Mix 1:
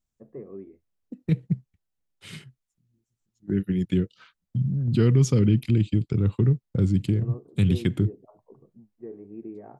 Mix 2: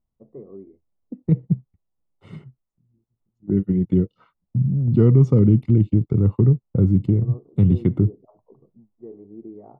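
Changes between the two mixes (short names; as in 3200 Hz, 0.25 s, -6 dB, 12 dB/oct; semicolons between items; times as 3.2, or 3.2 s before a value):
second voice +5.0 dB; master: add polynomial smoothing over 65 samples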